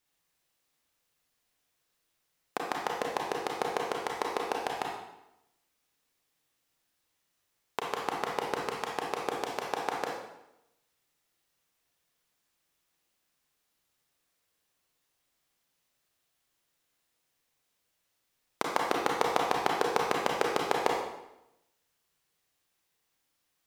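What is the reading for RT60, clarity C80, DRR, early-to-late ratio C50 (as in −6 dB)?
0.85 s, 4.5 dB, −1.5 dB, 1.0 dB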